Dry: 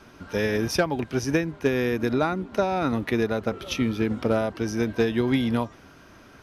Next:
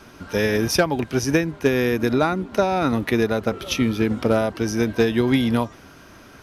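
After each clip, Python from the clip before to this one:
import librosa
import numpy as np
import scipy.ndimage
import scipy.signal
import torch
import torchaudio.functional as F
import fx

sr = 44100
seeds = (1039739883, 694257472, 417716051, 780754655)

y = fx.high_shelf(x, sr, hz=6600.0, db=6.0)
y = F.gain(torch.from_numpy(y), 4.0).numpy()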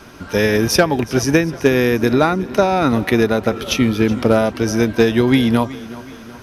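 y = fx.echo_feedback(x, sr, ms=372, feedback_pct=50, wet_db=-18)
y = F.gain(torch.from_numpy(y), 5.0).numpy()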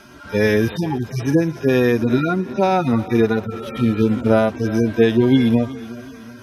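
y = fx.hpss_only(x, sr, part='harmonic')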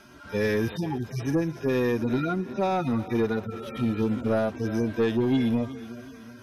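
y = 10.0 ** (-9.5 / 20.0) * np.tanh(x / 10.0 ** (-9.5 / 20.0))
y = F.gain(torch.from_numpy(y), -7.0).numpy()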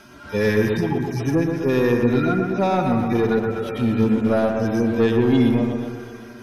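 y = fx.echo_bbd(x, sr, ms=123, stages=2048, feedback_pct=62, wet_db=-5.0)
y = F.gain(torch.from_numpy(y), 5.0).numpy()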